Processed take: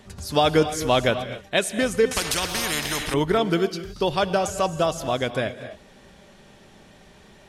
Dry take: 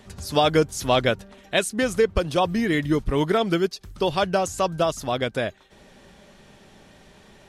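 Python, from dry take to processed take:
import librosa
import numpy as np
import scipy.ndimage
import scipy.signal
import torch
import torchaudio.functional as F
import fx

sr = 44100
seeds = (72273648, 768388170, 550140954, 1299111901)

y = fx.rev_gated(x, sr, seeds[0], gate_ms=290, shape='rising', drr_db=11.0)
y = fx.spectral_comp(y, sr, ratio=4.0, at=(2.11, 3.14))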